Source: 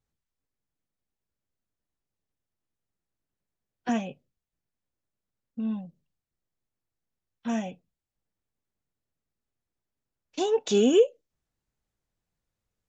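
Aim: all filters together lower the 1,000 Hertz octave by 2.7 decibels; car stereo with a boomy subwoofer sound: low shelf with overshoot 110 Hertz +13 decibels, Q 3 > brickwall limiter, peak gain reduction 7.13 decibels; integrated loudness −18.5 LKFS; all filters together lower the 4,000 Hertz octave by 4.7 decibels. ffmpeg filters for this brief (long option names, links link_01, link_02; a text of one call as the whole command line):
ffmpeg -i in.wav -af "lowshelf=frequency=110:width_type=q:width=3:gain=13,equalizer=frequency=1000:width_type=o:gain=-3.5,equalizer=frequency=4000:width_type=o:gain=-6.5,volume=13.5dB,alimiter=limit=-5.5dB:level=0:latency=1" out.wav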